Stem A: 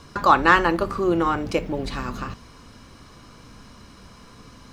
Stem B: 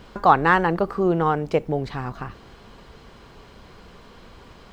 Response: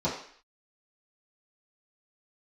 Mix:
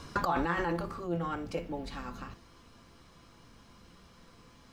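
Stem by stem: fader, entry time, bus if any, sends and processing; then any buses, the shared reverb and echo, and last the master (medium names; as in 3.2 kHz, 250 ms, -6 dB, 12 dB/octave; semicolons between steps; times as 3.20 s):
-3.5 dB, 0.00 s, no send, compressor with a negative ratio -22 dBFS, ratio -0.5; auto duck -12 dB, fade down 1.00 s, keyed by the second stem
-4.5 dB, 0.00 s, polarity flipped, no send, treble shelf 4.7 kHz +8.5 dB; feedback comb 170 Hz, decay 0.38 s, harmonics all, mix 90%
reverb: none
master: none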